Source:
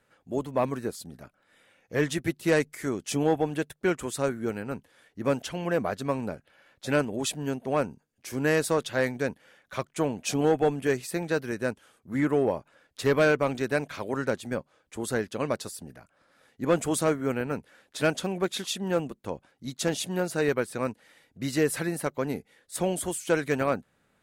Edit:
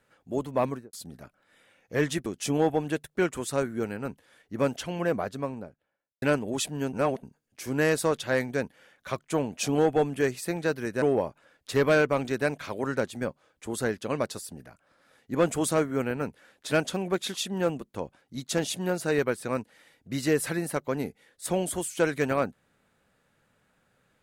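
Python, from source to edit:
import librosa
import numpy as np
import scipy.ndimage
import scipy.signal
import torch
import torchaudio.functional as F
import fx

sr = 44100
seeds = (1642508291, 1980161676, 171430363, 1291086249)

y = fx.studio_fade_out(x, sr, start_s=0.66, length_s=0.27)
y = fx.studio_fade_out(y, sr, start_s=5.62, length_s=1.26)
y = fx.edit(y, sr, fx.cut(start_s=2.26, length_s=0.66),
    fx.reverse_span(start_s=7.59, length_s=0.3),
    fx.cut(start_s=11.68, length_s=0.64), tone=tone)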